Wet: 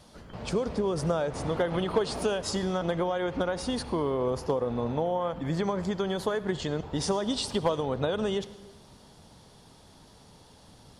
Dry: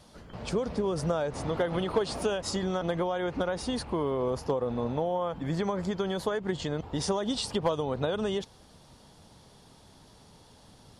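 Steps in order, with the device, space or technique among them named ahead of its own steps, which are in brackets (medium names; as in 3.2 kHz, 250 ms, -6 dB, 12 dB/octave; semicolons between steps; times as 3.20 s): saturated reverb return (on a send at -14 dB: reverberation RT60 1.2 s, pre-delay 61 ms + saturation -26 dBFS, distortion -13 dB); on the sum: trim +1 dB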